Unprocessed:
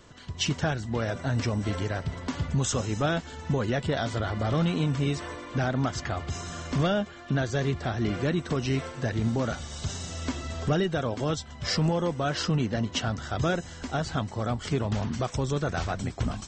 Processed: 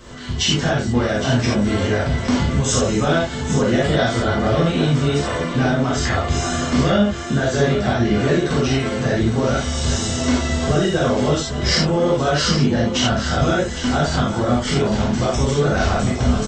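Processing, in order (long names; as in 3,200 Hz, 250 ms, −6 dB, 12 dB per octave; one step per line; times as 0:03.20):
downward compressor, threshold −28 dBFS, peak gain reduction 8 dB
single-tap delay 813 ms −10.5 dB
reverb whose tail is shaped and stops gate 110 ms flat, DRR −6.5 dB
level +7 dB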